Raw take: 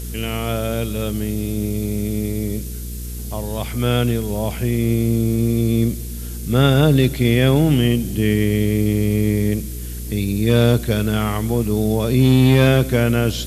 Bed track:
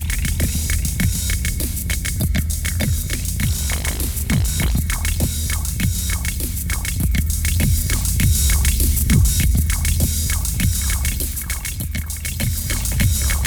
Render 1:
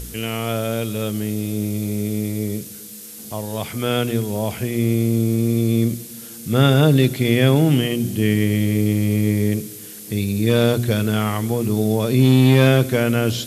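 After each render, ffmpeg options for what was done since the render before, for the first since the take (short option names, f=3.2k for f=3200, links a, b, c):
-af "bandreject=f=60:t=h:w=4,bandreject=f=120:t=h:w=4,bandreject=f=180:t=h:w=4,bandreject=f=240:t=h:w=4,bandreject=f=300:t=h:w=4,bandreject=f=360:t=h:w=4,bandreject=f=420:t=h:w=4"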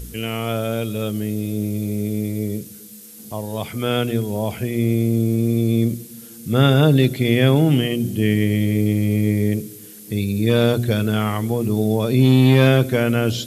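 -af "afftdn=nr=6:nf=-37"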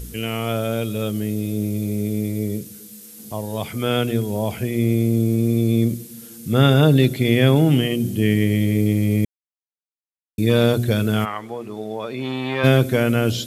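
-filter_complex "[0:a]asplit=3[a][b][c];[a]afade=t=out:st=11.24:d=0.02[d];[b]bandpass=f=1.3k:t=q:w=0.82,afade=t=in:st=11.24:d=0.02,afade=t=out:st=12.63:d=0.02[e];[c]afade=t=in:st=12.63:d=0.02[f];[d][e][f]amix=inputs=3:normalize=0,asplit=3[g][h][i];[g]atrim=end=9.25,asetpts=PTS-STARTPTS,afade=t=out:st=9.246:d=0.004:c=hsin[j];[h]atrim=start=9.25:end=10.38,asetpts=PTS-STARTPTS,volume=0[k];[i]atrim=start=10.38,asetpts=PTS-STARTPTS,afade=t=in:d=0.004:c=hsin[l];[j][k][l]concat=n=3:v=0:a=1"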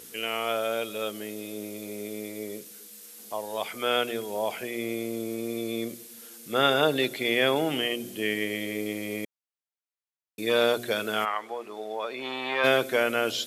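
-af "highpass=570,highshelf=f=5.5k:g=-6"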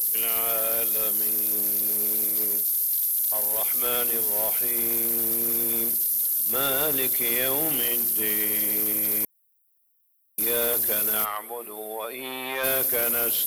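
-af "aexciter=amount=13.2:drive=9.4:freq=9.7k,asoftclip=type=tanh:threshold=-20dB"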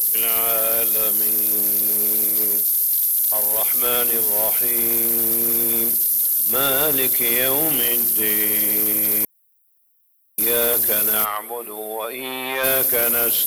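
-af "volume=5.5dB"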